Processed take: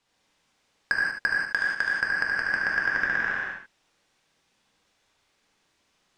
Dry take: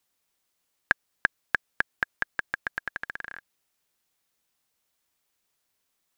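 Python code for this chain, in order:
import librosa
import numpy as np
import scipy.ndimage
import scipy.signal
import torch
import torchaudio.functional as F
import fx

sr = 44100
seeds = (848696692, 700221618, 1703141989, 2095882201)

y = fx.low_shelf(x, sr, hz=220.0, db=-10.5, at=(1.4, 1.91))
y = 10.0 ** (-21.0 / 20.0) * np.tanh(y / 10.0 ** (-21.0 / 20.0))
y = fx.air_absorb(y, sr, metres=100.0)
y = y + 10.0 ** (-6.5 / 20.0) * np.pad(y, (int(74 * sr / 1000.0), 0))[:len(y)]
y = fx.rev_gated(y, sr, seeds[0], gate_ms=210, shape='flat', drr_db=-4.0)
y = y * librosa.db_to_amplitude(7.0)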